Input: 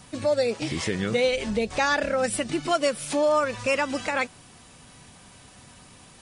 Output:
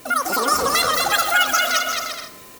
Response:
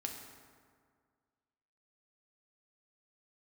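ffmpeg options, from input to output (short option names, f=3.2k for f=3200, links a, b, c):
-filter_complex "[0:a]aeval=exprs='val(0)+0.00178*sin(2*PI*430*n/s)':c=same,aemphasis=mode=production:type=cd,asetrate=105399,aresample=44100,aecho=1:1:220|352|431.2|478.7|507.2:0.631|0.398|0.251|0.158|0.1,asplit=2[a][b];[1:a]atrim=start_sample=2205,afade=t=out:st=0.38:d=0.01,atrim=end_sample=17199[c];[b][c]afir=irnorm=-1:irlink=0,volume=-3.5dB[d];[a][d]amix=inputs=2:normalize=0"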